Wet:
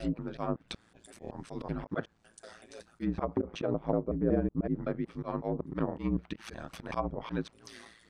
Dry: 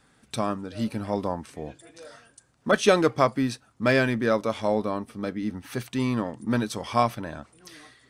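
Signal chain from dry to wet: slices in reverse order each 0.187 s, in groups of 5; auto swell 0.111 s; treble ducked by the level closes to 450 Hz, closed at -22.5 dBFS; ring modulator 56 Hz

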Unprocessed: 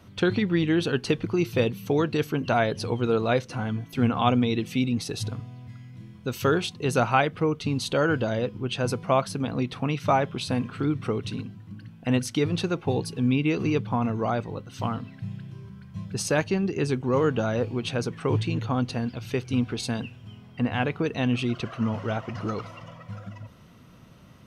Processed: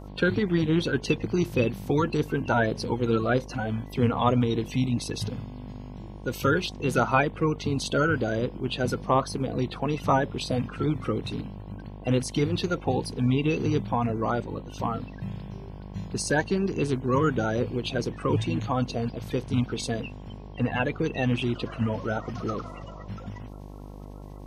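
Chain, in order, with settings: bin magnitudes rounded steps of 30 dB; buzz 50 Hz, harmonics 22, -42 dBFS -5 dB/oct

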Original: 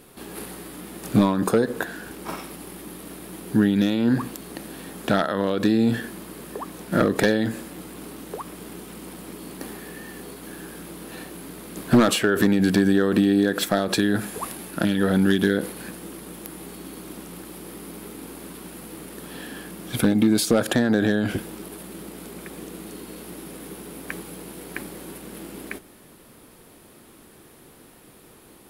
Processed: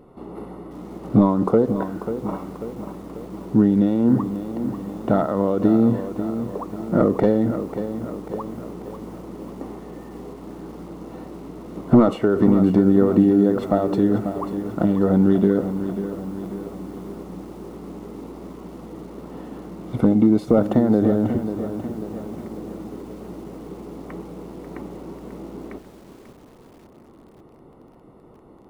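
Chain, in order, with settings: polynomial smoothing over 65 samples; lo-fi delay 0.541 s, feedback 55%, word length 8-bit, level -10 dB; gain +3 dB

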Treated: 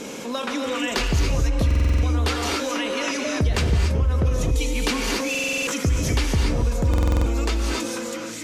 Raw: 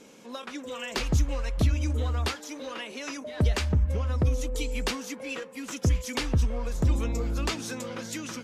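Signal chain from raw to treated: ending faded out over 1.46 s; non-linear reverb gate 0.3 s rising, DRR 1 dB; stuck buffer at 1.66/5.3/6.89, samples 2048, times 7; fast leveller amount 50%

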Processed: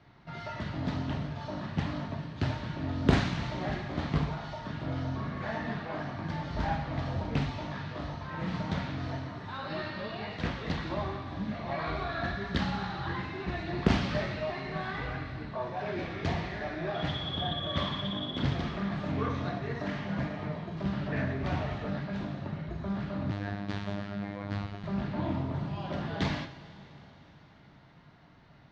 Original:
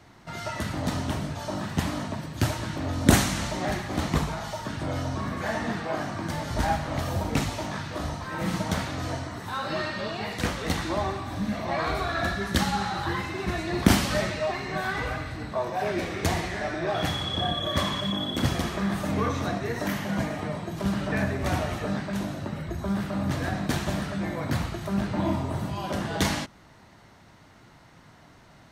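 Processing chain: LPF 4500 Hz 24 dB/oct; bell 140 Hz +9 dB 0.47 oct; two-slope reverb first 0.39 s, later 4.6 s, from -18 dB, DRR 5 dB; 23.31–24.84 robotiser 101 Hz; Doppler distortion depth 0.68 ms; gain -7.5 dB

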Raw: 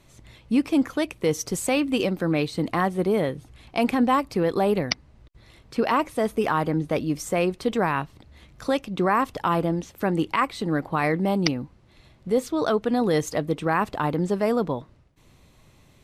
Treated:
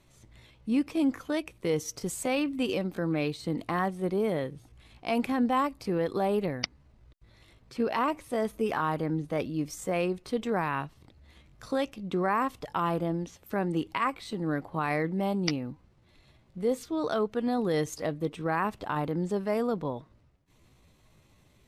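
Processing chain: tempo 0.74×; gain -6 dB

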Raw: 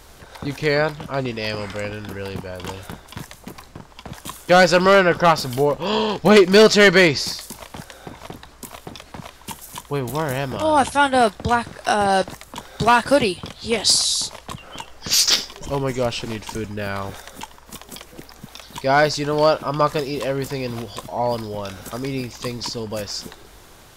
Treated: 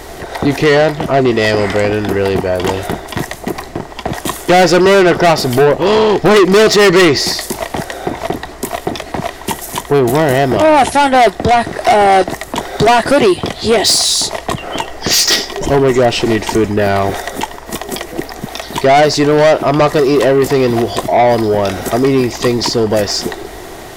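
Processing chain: in parallel at +3 dB: compressor, threshold -24 dBFS, peak gain reduction 14.5 dB; on the sum: small resonant body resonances 370/680/1900 Hz, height 11 dB, ringing for 20 ms; soft clip -10 dBFS, distortion -5 dB; gain +5 dB

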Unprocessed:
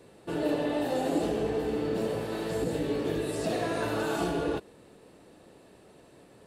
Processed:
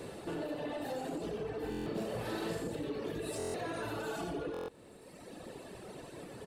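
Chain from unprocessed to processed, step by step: reverb removal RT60 1.5 s; compressor, threshold -44 dBFS, peak gain reduction 18 dB; in parallel at -0.5 dB: limiter -42 dBFS, peak gain reduction 9 dB; on the sum: soft clip -36 dBFS, distortion -19 dB; 1.58–2.68 doubler 42 ms -3 dB; on a send: echo 90 ms -8 dB; on the sum: stuck buffer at 1.7/3.38/4.52, samples 1024, times 6; gain +4.5 dB

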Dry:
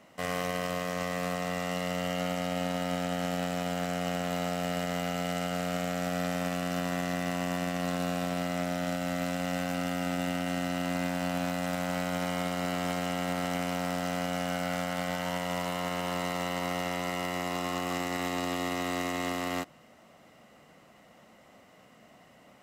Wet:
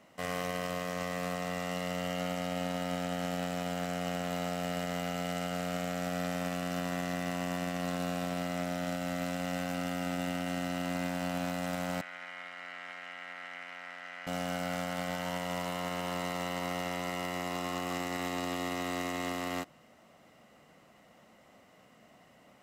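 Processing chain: 12.01–14.27 band-pass 1900 Hz, Q 2.2; gain -3 dB

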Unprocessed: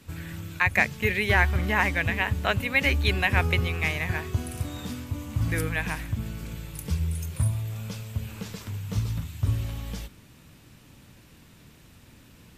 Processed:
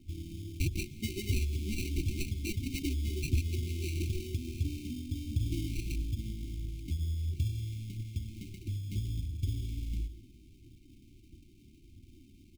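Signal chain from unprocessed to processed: median filter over 15 samples; steep low-pass 6100 Hz 96 dB/oct; notches 60/120/180/240/300/360/420/480 Hz; comb 2.9 ms, depth 57%; compressor, threshold -25 dBFS, peak gain reduction 8.5 dB; sample-and-hold 26×; flange 1.5 Hz, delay 0 ms, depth 5.3 ms, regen +64%; brick-wall FIR band-stop 390–2100 Hz; on a send: reverb RT60 1.5 s, pre-delay 0.109 s, DRR 18 dB; on the sum: gain +1.5 dB

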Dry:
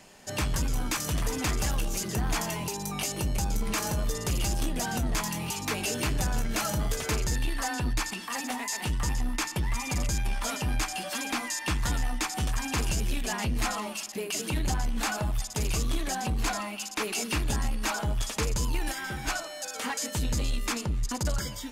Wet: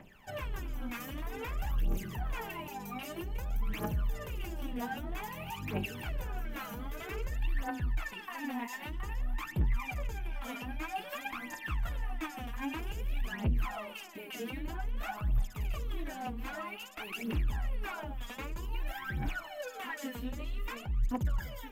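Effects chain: band shelf 6500 Hz -15.5 dB; limiter -28 dBFS, peak gain reduction 7 dB; phaser 0.52 Hz, delay 4.3 ms, feedback 78%; gain -7.5 dB

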